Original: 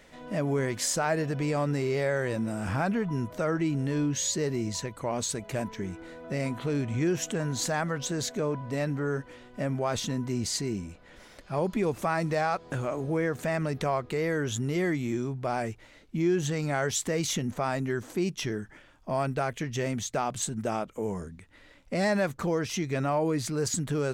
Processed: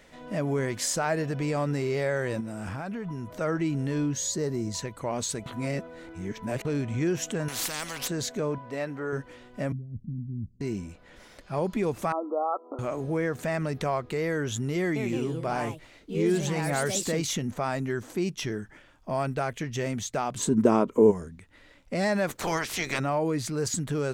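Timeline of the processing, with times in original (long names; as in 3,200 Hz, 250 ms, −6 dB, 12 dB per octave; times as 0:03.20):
0:02.40–0:03.41: downward compressor, threshold −31 dBFS
0:04.13–0:04.74: parametric band 2,600 Hz −9 dB 0.99 octaves
0:05.46–0:06.65: reverse
0:07.48–0:08.08: every bin compressed towards the loudest bin 4 to 1
0:08.58–0:09.13: bass and treble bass −11 dB, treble −6 dB
0:09.72–0:10.61: inverse Chebyshev low-pass filter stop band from 930 Hz, stop band 70 dB
0:12.12–0:12.79: linear-phase brick-wall band-pass 240–1,400 Hz
0:14.79–0:17.48: delay with pitch and tempo change per echo 168 ms, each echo +3 semitones, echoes 2, each echo −6 dB
0:20.36–0:21.10: hollow resonant body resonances 270/390/980 Hz, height 14 dB → 16 dB, ringing for 25 ms
0:22.28–0:22.98: ceiling on every frequency bin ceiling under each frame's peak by 24 dB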